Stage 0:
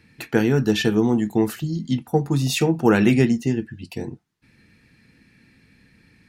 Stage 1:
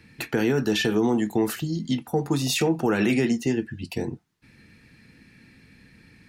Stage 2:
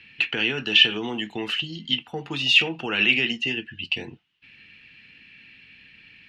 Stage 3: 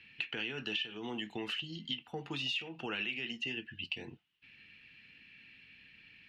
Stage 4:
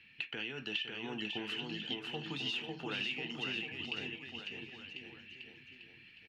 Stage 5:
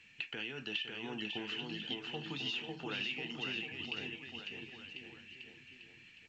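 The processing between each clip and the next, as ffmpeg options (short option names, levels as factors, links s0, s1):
-filter_complex "[0:a]acrossover=split=280[s0][s1];[s0]acompressor=threshold=0.0282:ratio=6[s2];[s1]alimiter=limit=0.119:level=0:latency=1:release=17[s3];[s2][s3]amix=inputs=2:normalize=0,volume=1.33"
-af "lowpass=f=2900:t=q:w=7.8,tiltshelf=f=1400:g=-6.5,volume=0.708"
-af "acompressor=threshold=0.0501:ratio=8,volume=0.398"
-af "aecho=1:1:550|1045|1490|1891|2252:0.631|0.398|0.251|0.158|0.1,volume=0.75"
-af "volume=0.891" -ar 16000 -c:a pcm_alaw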